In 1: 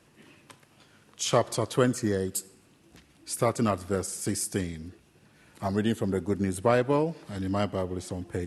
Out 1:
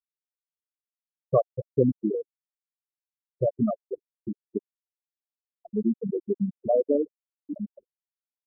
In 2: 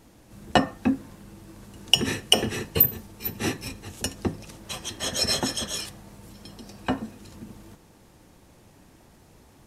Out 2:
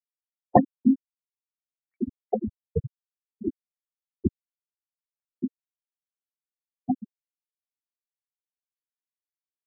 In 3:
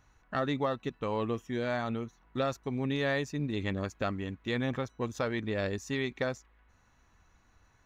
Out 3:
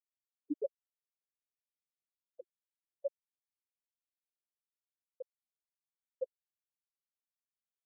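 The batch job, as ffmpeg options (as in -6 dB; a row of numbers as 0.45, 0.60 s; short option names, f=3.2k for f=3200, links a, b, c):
-filter_complex "[0:a]asplit=5[a][b][c][d][e];[b]adelay=253,afreqshift=110,volume=-18dB[f];[c]adelay=506,afreqshift=220,volume=-23.7dB[g];[d]adelay=759,afreqshift=330,volume=-29.4dB[h];[e]adelay=1012,afreqshift=440,volume=-35dB[i];[a][f][g][h][i]amix=inputs=5:normalize=0,afftfilt=real='re*gte(hypot(re,im),0.355)':imag='im*gte(hypot(re,im),0.355)':win_size=1024:overlap=0.75,afftfilt=real='re*lt(b*sr/1024,370*pow(2300/370,0.5+0.5*sin(2*PI*5.2*pts/sr)))':imag='im*lt(b*sr/1024,370*pow(2300/370,0.5+0.5*sin(2*PI*5.2*pts/sr)))':win_size=1024:overlap=0.75,volume=4dB"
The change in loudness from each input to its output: +0.5, -3.0, -10.5 LU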